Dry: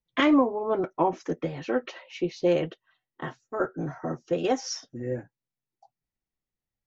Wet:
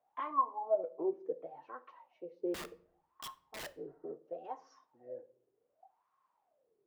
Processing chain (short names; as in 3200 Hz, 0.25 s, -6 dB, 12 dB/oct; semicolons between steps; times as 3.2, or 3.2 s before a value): added noise pink -61 dBFS; wah 0.69 Hz 390–1100 Hz, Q 17; 2.54–3.73 wrapped overs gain 42 dB; shoebox room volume 720 m³, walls furnished, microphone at 0.45 m; gain +2.5 dB